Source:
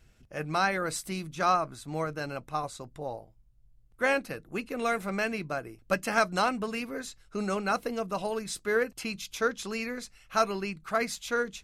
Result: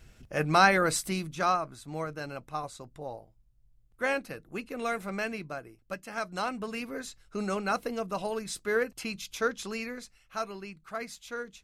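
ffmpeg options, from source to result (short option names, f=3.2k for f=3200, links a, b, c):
-af "volume=17.5dB,afade=t=out:st=0.78:d=0.8:silence=0.354813,afade=t=out:st=5.29:d=0.77:silence=0.334965,afade=t=in:st=6.06:d=0.86:silence=0.266073,afade=t=out:st=9.65:d=0.7:silence=0.421697"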